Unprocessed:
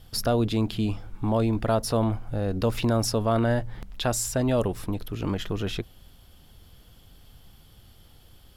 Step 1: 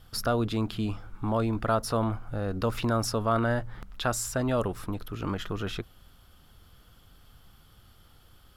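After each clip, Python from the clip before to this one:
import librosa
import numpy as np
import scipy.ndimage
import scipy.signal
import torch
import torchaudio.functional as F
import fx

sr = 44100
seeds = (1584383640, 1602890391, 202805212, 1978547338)

y = fx.peak_eq(x, sr, hz=1300.0, db=9.5, octaves=0.64)
y = y * 10.0 ** (-4.0 / 20.0)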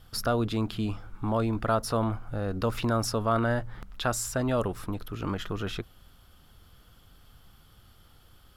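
y = x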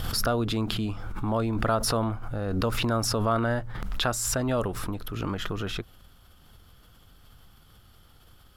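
y = fx.pre_swell(x, sr, db_per_s=29.0)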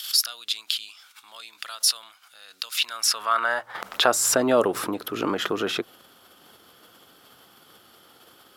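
y = fx.filter_sweep_highpass(x, sr, from_hz=3700.0, to_hz=340.0, start_s=2.72, end_s=4.21, q=1.2)
y = y * 10.0 ** (7.0 / 20.0)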